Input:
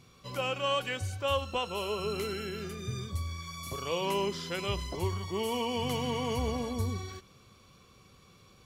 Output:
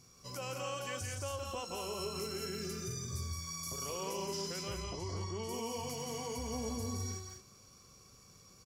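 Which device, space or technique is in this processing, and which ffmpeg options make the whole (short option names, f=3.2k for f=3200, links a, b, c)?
over-bright horn tweeter: -filter_complex "[0:a]highshelf=f=4.4k:t=q:w=3:g=7,alimiter=level_in=2.5dB:limit=-24dB:level=0:latency=1:release=75,volume=-2.5dB,asettb=1/sr,asplit=3[a][b][c];[a]atrim=end=4.634[d];[b]atrim=start=4.63:end=5.49,asetpts=PTS-STARTPTS,afade=t=in:d=0.004:c=qsin,afade=t=out:st=0.856:d=0.004:c=qsin,lowpass=5.2k[e];[c]atrim=start=5.486[f];[d][e]acrossfade=d=0.004:c1=hsin:c2=qsin[g];[g][f]acrossfade=d=0.004:c1=qsin:c2=hsin,aecho=1:1:169.1|209.9:0.562|0.447,volume=-5.5dB"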